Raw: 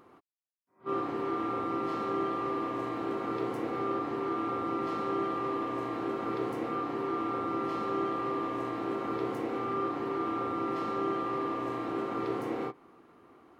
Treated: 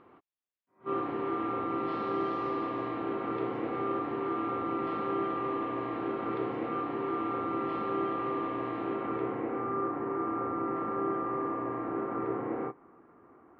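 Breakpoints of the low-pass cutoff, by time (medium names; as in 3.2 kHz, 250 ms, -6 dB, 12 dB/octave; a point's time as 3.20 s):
low-pass 24 dB/octave
1.72 s 3.3 kHz
2.35 s 5.8 kHz
3.04 s 3.3 kHz
8.82 s 3.3 kHz
9.72 s 1.9 kHz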